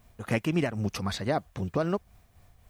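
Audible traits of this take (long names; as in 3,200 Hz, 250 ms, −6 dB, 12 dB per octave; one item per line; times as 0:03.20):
a quantiser's noise floor 12 bits, dither triangular
tremolo triangle 3.8 Hz, depth 50%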